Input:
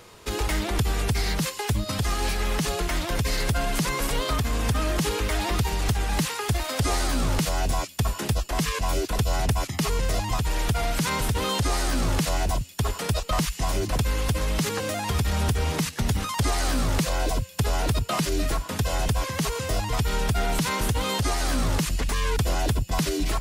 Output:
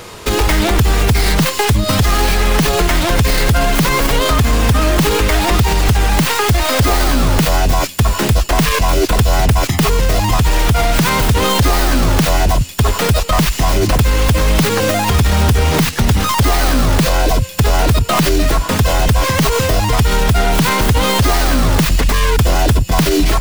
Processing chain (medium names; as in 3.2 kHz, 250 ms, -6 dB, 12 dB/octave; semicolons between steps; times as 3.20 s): tracing distortion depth 0.19 ms; loudness maximiser +20 dB; trim -4 dB